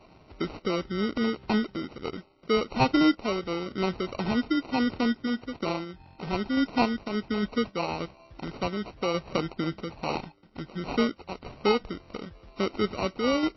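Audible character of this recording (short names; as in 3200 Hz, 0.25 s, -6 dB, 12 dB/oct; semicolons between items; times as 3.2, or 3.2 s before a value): aliases and images of a low sample rate 1700 Hz, jitter 0%; random-step tremolo; MP3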